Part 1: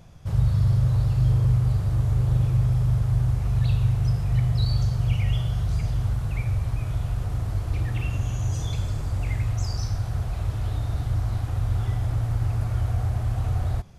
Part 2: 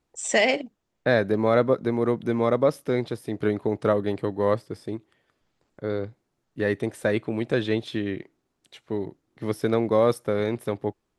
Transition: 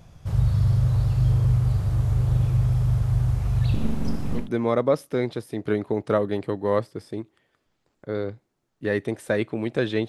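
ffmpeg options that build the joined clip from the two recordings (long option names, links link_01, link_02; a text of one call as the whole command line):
ffmpeg -i cue0.wav -i cue1.wav -filter_complex "[0:a]asettb=1/sr,asplit=3[link_01][link_02][link_03];[link_01]atrim=end=3.744[link_04];[link_02]atrim=start=3.74:end=4.5,asetpts=PTS-STARTPTS,afade=type=in:duration=0.004:curve=qsin,afade=type=out:start_time=0.756:duration=0.004:curve=qsin,aeval=exprs='abs(val(0))':channel_layout=same[link_05];[link_03]atrim=start=4.496[link_06];[link_04][link_05]acrossfade=duration=0.004:curve1=hsin:curve2=qsin[link_07];[link_07][link_06]acrossfade=duration=0.004:curve1=qsin:curve2=hsin,apad=whole_dur=10.08,atrim=end=10.08,atrim=end=4.5,asetpts=PTS-STARTPTS[link_08];[1:a]atrim=start=2.07:end=7.83,asetpts=PTS-STARTPTS[link_09];[link_08][link_09]acrossfade=duration=0.18:curve1=tri:curve2=tri" out.wav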